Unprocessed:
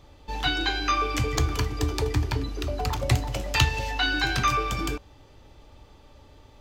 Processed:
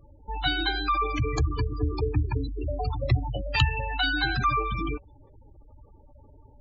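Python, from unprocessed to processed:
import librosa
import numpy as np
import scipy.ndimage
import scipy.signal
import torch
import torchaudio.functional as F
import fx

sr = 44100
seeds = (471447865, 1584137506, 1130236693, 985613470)

y = fx.spec_gate(x, sr, threshold_db=-15, keep='strong')
y = fx.peak_eq(y, sr, hz=1200.0, db=fx.line((2.84, -7.0), (3.35, 5.0)), octaves=1.6, at=(2.84, 3.35), fade=0.02)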